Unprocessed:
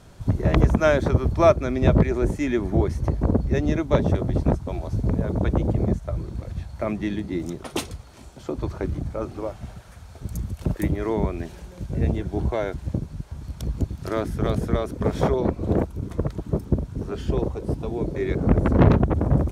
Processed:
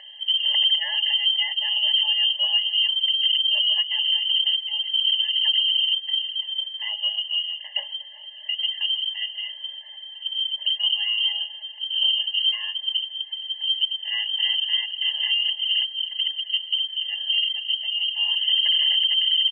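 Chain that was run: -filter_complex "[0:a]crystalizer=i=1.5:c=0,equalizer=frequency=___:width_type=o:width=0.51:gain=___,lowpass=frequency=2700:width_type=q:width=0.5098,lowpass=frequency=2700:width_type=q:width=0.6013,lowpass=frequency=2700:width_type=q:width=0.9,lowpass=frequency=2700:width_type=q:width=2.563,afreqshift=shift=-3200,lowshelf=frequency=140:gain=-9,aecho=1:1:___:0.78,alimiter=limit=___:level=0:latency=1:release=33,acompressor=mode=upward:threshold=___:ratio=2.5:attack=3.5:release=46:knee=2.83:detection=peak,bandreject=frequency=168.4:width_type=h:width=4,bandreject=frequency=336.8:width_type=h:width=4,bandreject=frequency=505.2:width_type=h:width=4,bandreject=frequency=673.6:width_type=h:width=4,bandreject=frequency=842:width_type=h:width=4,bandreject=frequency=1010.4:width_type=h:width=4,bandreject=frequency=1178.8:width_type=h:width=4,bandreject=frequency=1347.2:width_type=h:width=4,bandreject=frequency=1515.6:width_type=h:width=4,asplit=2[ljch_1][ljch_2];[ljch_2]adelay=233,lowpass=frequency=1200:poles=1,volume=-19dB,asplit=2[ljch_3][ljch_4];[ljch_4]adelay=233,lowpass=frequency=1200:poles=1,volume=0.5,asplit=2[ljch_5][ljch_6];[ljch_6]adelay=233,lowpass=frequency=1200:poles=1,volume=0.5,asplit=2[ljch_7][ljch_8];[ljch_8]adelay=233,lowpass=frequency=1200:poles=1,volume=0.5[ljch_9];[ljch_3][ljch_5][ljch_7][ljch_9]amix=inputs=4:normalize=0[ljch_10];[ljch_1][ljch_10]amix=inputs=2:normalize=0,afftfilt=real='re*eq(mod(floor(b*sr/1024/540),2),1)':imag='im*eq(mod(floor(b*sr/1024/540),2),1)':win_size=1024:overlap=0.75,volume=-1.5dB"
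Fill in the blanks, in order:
1800, -10, 3.5, -11dB, -35dB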